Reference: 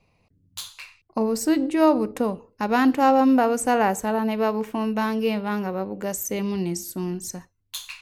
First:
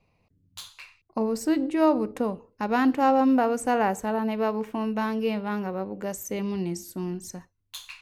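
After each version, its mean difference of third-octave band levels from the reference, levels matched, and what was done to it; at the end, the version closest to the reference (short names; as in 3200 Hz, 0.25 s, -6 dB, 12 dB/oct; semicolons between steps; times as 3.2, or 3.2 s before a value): 1.0 dB: high shelf 4600 Hz -6 dB; gain -3 dB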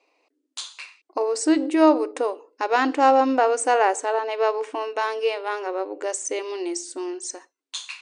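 6.0 dB: brick-wall FIR band-pass 270–9700 Hz; gain +2 dB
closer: first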